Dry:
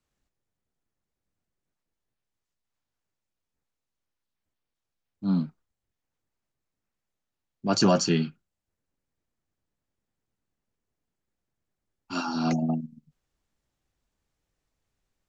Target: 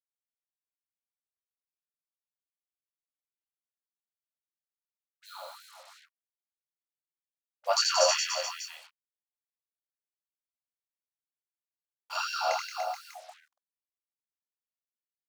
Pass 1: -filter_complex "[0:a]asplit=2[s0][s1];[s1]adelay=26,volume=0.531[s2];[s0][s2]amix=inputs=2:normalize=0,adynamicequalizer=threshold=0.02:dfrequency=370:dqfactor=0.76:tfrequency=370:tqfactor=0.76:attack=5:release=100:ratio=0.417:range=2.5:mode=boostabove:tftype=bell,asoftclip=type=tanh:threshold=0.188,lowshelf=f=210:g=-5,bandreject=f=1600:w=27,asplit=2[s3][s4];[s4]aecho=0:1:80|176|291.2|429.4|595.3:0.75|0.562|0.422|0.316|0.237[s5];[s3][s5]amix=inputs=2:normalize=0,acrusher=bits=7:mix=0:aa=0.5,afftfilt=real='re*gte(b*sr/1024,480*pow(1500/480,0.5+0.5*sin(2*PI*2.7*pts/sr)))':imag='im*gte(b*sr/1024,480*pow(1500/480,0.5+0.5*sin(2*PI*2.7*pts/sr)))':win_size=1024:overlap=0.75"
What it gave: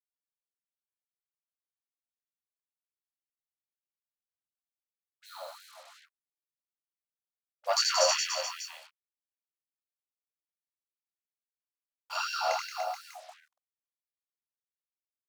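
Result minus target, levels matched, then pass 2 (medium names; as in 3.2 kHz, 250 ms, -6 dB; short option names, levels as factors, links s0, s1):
saturation: distortion +8 dB
-filter_complex "[0:a]asplit=2[s0][s1];[s1]adelay=26,volume=0.531[s2];[s0][s2]amix=inputs=2:normalize=0,adynamicequalizer=threshold=0.02:dfrequency=370:dqfactor=0.76:tfrequency=370:tqfactor=0.76:attack=5:release=100:ratio=0.417:range=2.5:mode=boostabove:tftype=bell,asoftclip=type=tanh:threshold=0.398,lowshelf=f=210:g=-5,bandreject=f=1600:w=27,asplit=2[s3][s4];[s4]aecho=0:1:80|176|291.2|429.4|595.3:0.75|0.562|0.422|0.316|0.237[s5];[s3][s5]amix=inputs=2:normalize=0,acrusher=bits=7:mix=0:aa=0.5,afftfilt=real='re*gte(b*sr/1024,480*pow(1500/480,0.5+0.5*sin(2*PI*2.7*pts/sr)))':imag='im*gte(b*sr/1024,480*pow(1500/480,0.5+0.5*sin(2*PI*2.7*pts/sr)))':win_size=1024:overlap=0.75"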